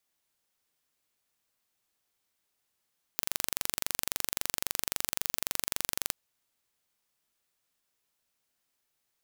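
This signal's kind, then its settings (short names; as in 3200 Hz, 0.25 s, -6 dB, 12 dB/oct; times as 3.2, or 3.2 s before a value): pulse train 23.7/s, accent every 0, -2 dBFS 2.92 s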